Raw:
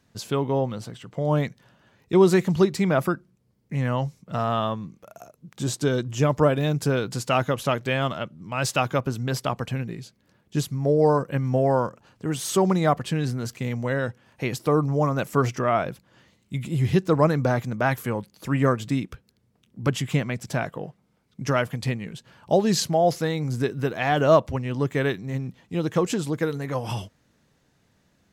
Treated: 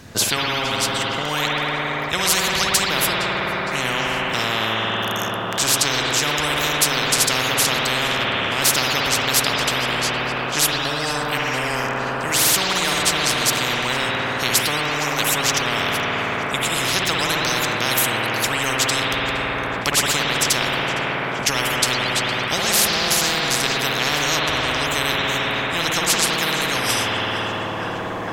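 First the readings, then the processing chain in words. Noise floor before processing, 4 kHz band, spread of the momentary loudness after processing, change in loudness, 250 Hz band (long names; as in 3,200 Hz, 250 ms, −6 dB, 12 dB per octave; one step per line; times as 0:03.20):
−66 dBFS, +18.0 dB, 5 LU, +5.5 dB, −3.0 dB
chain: tape delay 463 ms, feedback 79%, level −18 dB, low-pass 5,000 Hz
spring reverb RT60 2.3 s, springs 54 ms, chirp 70 ms, DRR −1.5 dB
every bin compressed towards the loudest bin 10 to 1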